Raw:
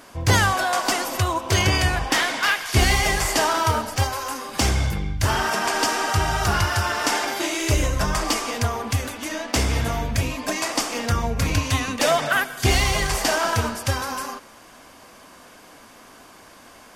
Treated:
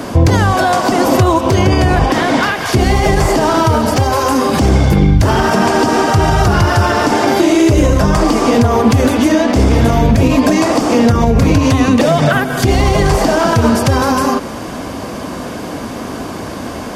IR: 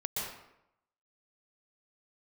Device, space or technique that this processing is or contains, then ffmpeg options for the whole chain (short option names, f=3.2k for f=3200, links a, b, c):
mastering chain: -filter_complex "[0:a]highpass=56,equalizer=f=4.5k:t=o:w=1.5:g=3.5,acrossover=split=200|1500[a][b][c];[a]acompressor=threshold=-36dB:ratio=4[d];[b]acompressor=threshold=-28dB:ratio=4[e];[c]acompressor=threshold=-31dB:ratio=4[f];[d][e][f]amix=inputs=3:normalize=0,acompressor=threshold=-32dB:ratio=2.5,tiltshelf=f=730:g=9,alimiter=level_in=23dB:limit=-1dB:release=50:level=0:latency=1,volume=-1dB"